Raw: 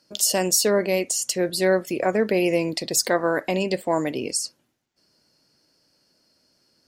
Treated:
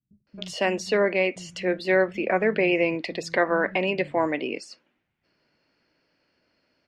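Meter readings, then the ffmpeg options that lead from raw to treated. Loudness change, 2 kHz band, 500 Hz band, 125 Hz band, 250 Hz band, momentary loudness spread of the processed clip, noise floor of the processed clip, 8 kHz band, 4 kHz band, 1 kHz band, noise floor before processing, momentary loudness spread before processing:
-2.0 dB, +3.5 dB, -1.5 dB, -4.0 dB, -2.5 dB, 9 LU, -76 dBFS, -20.5 dB, -7.5 dB, -0.5 dB, -69 dBFS, 6 LU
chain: -filter_complex "[0:a]lowpass=f=2.4k:t=q:w=2.1,acrossover=split=160[a][b];[b]adelay=270[c];[a][c]amix=inputs=2:normalize=0,volume=-1.5dB"

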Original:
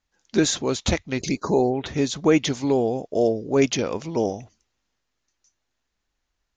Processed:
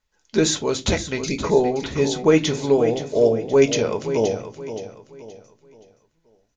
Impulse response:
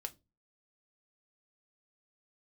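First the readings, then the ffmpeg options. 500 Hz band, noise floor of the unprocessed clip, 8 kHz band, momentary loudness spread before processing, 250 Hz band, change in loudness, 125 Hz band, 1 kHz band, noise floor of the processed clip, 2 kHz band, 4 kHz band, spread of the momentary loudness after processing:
+4.5 dB, -78 dBFS, +2.0 dB, 6 LU, +0.5 dB, +2.5 dB, +2.0 dB, +1.0 dB, -69 dBFS, +2.0 dB, +2.0 dB, 13 LU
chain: -filter_complex "[0:a]aecho=1:1:523|1046|1569|2092:0.282|0.0986|0.0345|0.0121[a];[1:a]atrim=start_sample=2205[b];[a][b]afir=irnorm=-1:irlink=0,volume=4.5dB"

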